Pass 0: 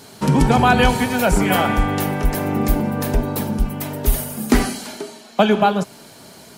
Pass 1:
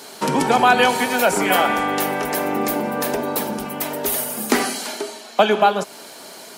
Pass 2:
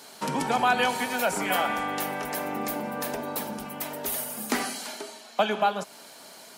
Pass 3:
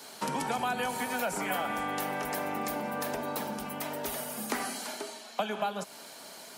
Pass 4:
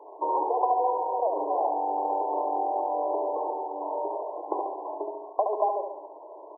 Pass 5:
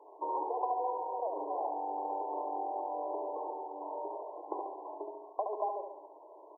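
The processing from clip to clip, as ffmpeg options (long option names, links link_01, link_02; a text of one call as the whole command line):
ffmpeg -i in.wav -filter_complex "[0:a]highpass=360,asplit=2[link_01][link_02];[link_02]acompressor=threshold=-26dB:ratio=6,volume=-2dB[link_03];[link_01][link_03]amix=inputs=2:normalize=0" out.wav
ffmpeg -i in.wav -af "equalizer=frequency=380:width_type=o:width=0.63:gain=-5.5,volume=-8dB" out.wav
ffmpeg -i in.wav -filter_complex "[0:a]acrossover=split=180|540|1800|7400[link_01][link_02][link_03][link_04][link_05];[link_01]acompressor=threshold=-45dB:ratio=4[link_06];[link_02]acompressor=threshold=-39dB:ratio=4[link_07];[link_03]acompressor=threshold=-33dB:ratio=4[link_08];[link_04]acompressor=threshold=-42dB:ratio=4[link_09];[link_05]acompressor=threshold=-40dB:ratio=4[link_10];[link_06][link_07][link_08][link_09][link_10]amix=inputs=5:normalize=0" out.wav
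ffmpeg -i in.wav -af "aecho=1:1:70|140|210|280|350|420|490:0.562|0.309|0.17|0.0936|0.0515|0.0283|0.0156,afftfilt=real='re*between(b*sr/4096,300,1100)':imag='im*between(b*sr/4096,300,1100)':win_size=4096:overlap=0.75,volume=6.5dB" out.wav
ffmpeg -i in.wav -af "equalizer=frequency=620:width_type=o:width=0.77:gain=-2.5,volume=-7.5dB" out.wav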